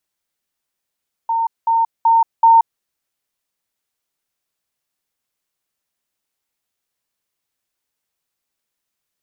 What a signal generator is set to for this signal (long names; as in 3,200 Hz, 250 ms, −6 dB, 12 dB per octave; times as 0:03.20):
level staircase 913 Hz −15 dBFS, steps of 3 dB, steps 4, 0.18 s 0.20 s